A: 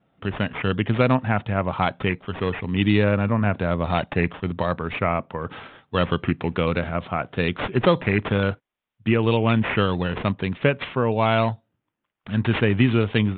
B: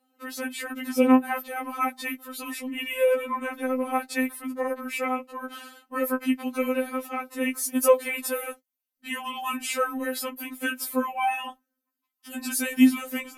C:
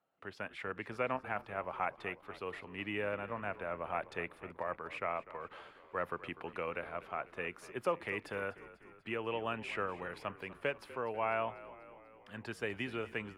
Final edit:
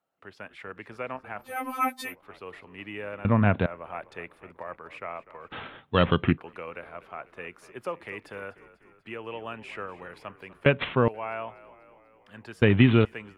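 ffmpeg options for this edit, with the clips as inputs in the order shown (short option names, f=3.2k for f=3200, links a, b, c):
-filter_complex "[0:a]asplit=4[a][b][c][d];[2:a]asplit=6[e][f][g][h][i][j];[e]atrim=end=1.57[k];[1:a]atrim=start=1.41:end=2.16[l];[f]atrim=start=2:end=3.252[m];[a]atrim=start=3.248:end=3.662[n];[g]atrim=start=3.658:end=5.522[o];[b]atrim=start=5.518:end=6.382[p];[h]atrim=start=6.378:end=10.662[q];[c]atrim=start=10.658:end=11.082[r];[i]atrim=start=11.078:end=12.622[s];[d]atrim=start=12.618:end=13.052[t];[j]atrim=start=13.048[u];[k][l]acrossfade=d=0.16:c1=tri:c2=tri[v];[v][m]acrossfade=d=0.16:c1=tri:c2=tri[w];[w][n]acrossfade=d=0.004:c1=hsin:c2=hsin[x];[x][o]acrossfade=d=0.004:c1=hsin:c2=hsin[y];[y][p]acrossfade=d=0.004:c1=hsin:c2=hsin[z];[z][q]acrossfade=d=0.004:c1=hsin:c2=hsin[aa];[aa][r]acrossfade=d=0.004:c1=hsin:c2=hsin[ab];[ab][s]acrossfade=d=0.004:c1=hsin:c2=hsin[ac];[ac][t]acrossfade=d=0.004:c1=hsin:c2=hsin[ad];[ad][u]acrossfade=d=0.004:c1=hsin:c2=hsin"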